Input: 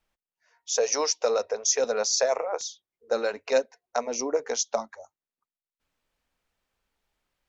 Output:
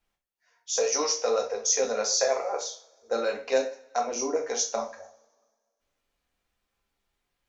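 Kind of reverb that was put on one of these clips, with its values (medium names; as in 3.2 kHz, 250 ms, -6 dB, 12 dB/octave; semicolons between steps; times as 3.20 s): two-slope reverb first 0.35 s, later 1.7 s, from -26 dB, DRR 0 dB; trim -3.5 dB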